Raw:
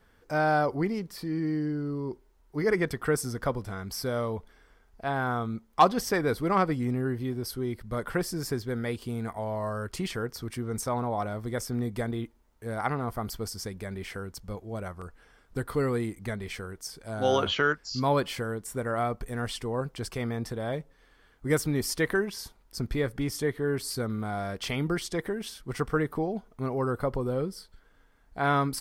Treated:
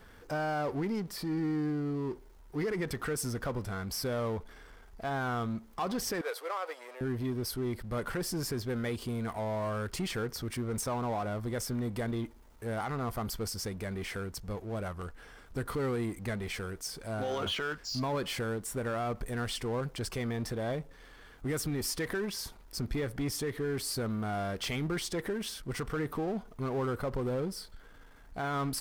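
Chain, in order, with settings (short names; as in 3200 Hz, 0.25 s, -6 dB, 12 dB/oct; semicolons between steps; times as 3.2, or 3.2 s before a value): power-law curve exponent 0.7; 6.21–7.01 elliptic high-pass 490 Hz, stop band 80 dB; limiter -18.5 dBFS, peak gain reduction 9 dB; gain -7.5 dB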